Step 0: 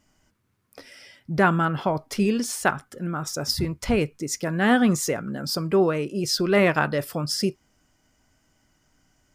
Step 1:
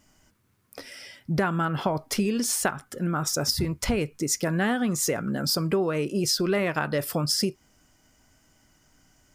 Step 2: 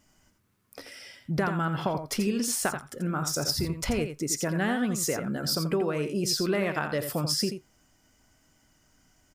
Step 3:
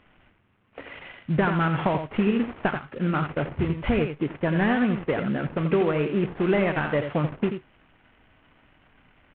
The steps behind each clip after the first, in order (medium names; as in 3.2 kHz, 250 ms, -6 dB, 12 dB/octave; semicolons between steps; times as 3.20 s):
treble shelf 6.9 kHz +5 dB; compression 12:1, threshold -24 dBFS, peak gain reduction 11.5 dB; trim +3 dB
delay 85 ms -8.5 dB; trim -3 dB
CVSD coder 16 kbps; trim +5.5 dB